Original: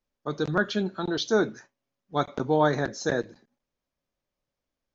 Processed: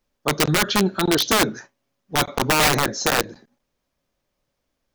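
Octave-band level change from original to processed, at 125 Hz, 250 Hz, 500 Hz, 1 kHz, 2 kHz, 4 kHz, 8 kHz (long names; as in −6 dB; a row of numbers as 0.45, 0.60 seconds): +6.0 dB, +5.0 dB, +2.0 dB, +7.5 dB, +9.0 dB, +13.5 dB, can't be measured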